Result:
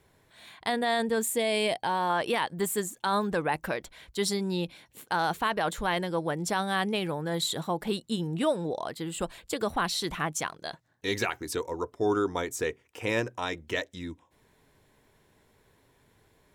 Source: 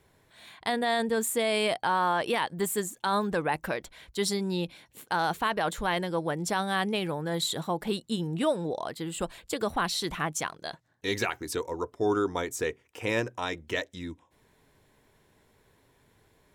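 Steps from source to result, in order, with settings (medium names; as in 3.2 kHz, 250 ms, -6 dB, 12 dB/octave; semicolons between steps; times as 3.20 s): 1.22–2.10 s: peaking EQ 1.3 kHz -11 dB 0.4 oct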